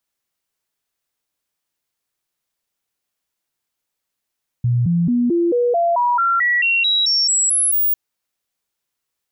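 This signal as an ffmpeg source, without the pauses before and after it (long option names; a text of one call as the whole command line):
ffmpeg -f lavfi -i "aevalsrc='0.211*clip(min(mod(t,0.22),0.22-mod(t,0.22))/0.005,0,1)*sin(2*PI*121*pow(2,floor(t/0.22)/2)*mod(t,0.22))':duration=3.3:sample_rate=44100" out.wav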